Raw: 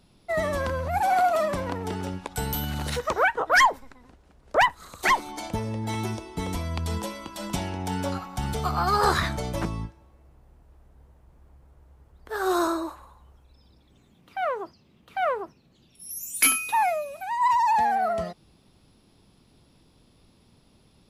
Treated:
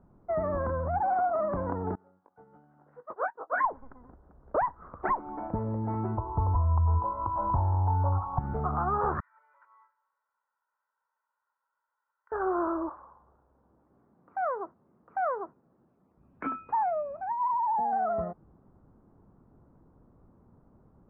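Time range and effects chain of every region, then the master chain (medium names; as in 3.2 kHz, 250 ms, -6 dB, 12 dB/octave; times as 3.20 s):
1.95–3.65 s: high-pass 230 Hz + doubling 20 ms -5 dB + upward expansion 2.5:1, over -31 dBFS
6.17–8.39 s: resonant low-pass 990 Hz, resonance Q 6.8 + resonant low shelf 140 Hz +10.5 dB, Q 3
9.20–12.32 s: Bessel high-pass 2.2 kHz, order 4 + comb 2.1 ms, depth 96% + compression 12:1, threshold -48 dBFS
12.89–16.18 s: high-pass 350 Hz 6 dB/octave + dynamic bell 2.4 kHz, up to +4 dB, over -44 dBFS, Q 1
17.32–17.93 s: high-pass 170 Hz + peaking EQ 1.7 kHz -12 dB 1.1 oct
whole clip: steep low-pass 1.4 kHz 36 dB/octave; compression 2.5:1, threshold -27 dBFS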